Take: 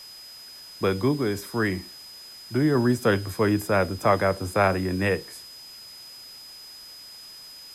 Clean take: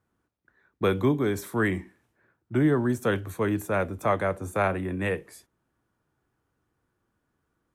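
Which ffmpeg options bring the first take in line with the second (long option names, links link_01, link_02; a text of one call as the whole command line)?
ffmpeg -i in.wav -af "bandreject=frequency=5000:width=30,afwtdn=0.0035,asetnsamples=nb_out_samples=441:pad=0,asendcmd='2.75 volume volume -4dB',volume=0dB" out.wav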